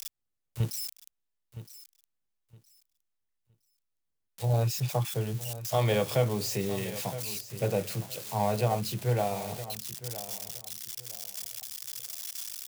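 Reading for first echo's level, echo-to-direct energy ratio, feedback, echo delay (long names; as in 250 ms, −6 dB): −14.0 dB, −13.5 dB, 23%, 965 ms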